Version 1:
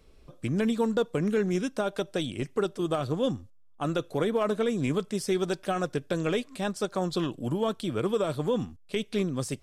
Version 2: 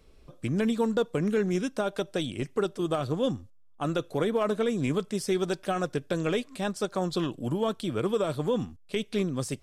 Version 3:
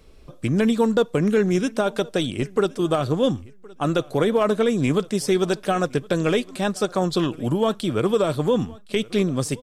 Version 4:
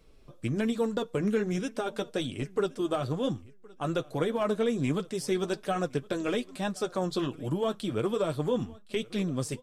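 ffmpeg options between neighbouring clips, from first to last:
-af anull
-af "aecho=1:1:1067|2134:0.0631|0.0107,volume=7dB"
-af "flanger=delay=5.9:depth=3.7:regen=-42:speed=1.2:shape=triangular,volume=-4.5dB"

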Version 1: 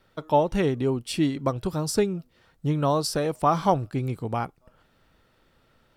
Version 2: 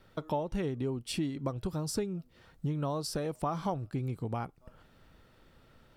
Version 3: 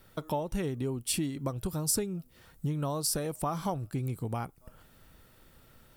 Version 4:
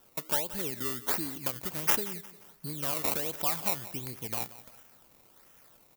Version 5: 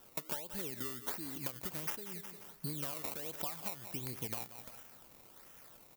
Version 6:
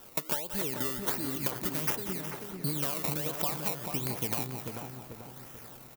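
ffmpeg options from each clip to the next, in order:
-af "lowshelf=f=320:g=4.5,acompressor=threshold=-34dB:ratio=3"
-filter_complex "[0:a]equalizer=f=470:w=0.37:g=-2.5,acrossover=split=6200[a][b];[b]crystalizer=i=2.5:c=0[c];[a][c]amix=inputs=2:normalize=0,volume=2.5dB"
-af "acrusher=samples=19:mix=1:aa=0.000001:lfo=1:lforange=19:lforate=1.4,aemphasis=mode=production:type=bsi,aecho=1:1:177|354|531:0.15|0.0554|0.0205,volume=-2.5dB"
-af "acompressor=threshold=-36dB:ratio=16,volume=1.5dB"
-filter_complex "[0:a]asplit=2[a][b];[b]adelay=439,lowpass=f=1.2k:p=1,volume=-3.5dB,asplit=2[c][d];[d]adelay=439,lowpass=f=1.2k:p=1,volume=0.5,asplit=2[e][f];[f]adelay=439,lowpass=f=1.2k:p=1,volume=0.5,asplit=2[g][h];[h]adelay=439,lowpass=f=1.2k:p=1,volume=0.5,asplit=2[i][j];[j]adelay=439,lowpass=f=1.2k:p=1,volume=0.5,asplit=2[k][l];[l]adelay=439,lowpass=f=1.2k:p=1,volume=0.5,asplit=2[m][n];[n]adelay=439,lowpass=f=1.2k:p=1,volume=0.5[o];[a][c][e][g][i][k][m][o]amix=inputs=8:normalize=0,volume=8dB"

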